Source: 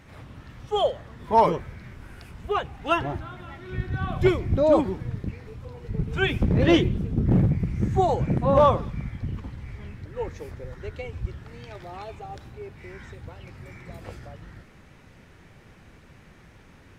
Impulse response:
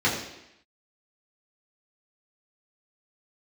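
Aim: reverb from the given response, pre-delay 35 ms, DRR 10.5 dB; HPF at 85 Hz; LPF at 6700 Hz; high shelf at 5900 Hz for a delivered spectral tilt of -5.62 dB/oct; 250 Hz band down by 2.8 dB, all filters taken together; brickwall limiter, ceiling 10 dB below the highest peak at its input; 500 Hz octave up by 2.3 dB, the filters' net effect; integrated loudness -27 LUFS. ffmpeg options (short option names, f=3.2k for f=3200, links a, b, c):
-filter_complex "[0:a]highpass=85,lowpass=6.7k,equalizer=f=250:t=o:g=-6.5,equalizer=f=500:t=o:g=4.5,highshelf=f=5.9k:g=3.5,alimiter=limit=-15dB:level=0:latency=1,asplit=2[a][b];[1:a]atrim=start_sample=2205,adelay=35[c];[b][c]afir=irnorm=-1:irlink=0,volume=-25.5dB[d];[a][d]amix=inputs=2:normalize=0,volume=0.5dB"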